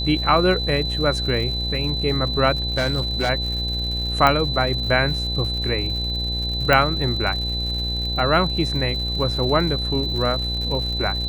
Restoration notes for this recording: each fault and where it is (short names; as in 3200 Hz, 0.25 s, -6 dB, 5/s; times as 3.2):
buzz 60 Hz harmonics 15 -27 dBFS
crackle 140/s -30 dBFS
tone 4000 Hz -25 dBFS
2.72–3.3 clipped -16 dBFS
4.27 pop -5 dBFS
6.73 pop -4 dBFS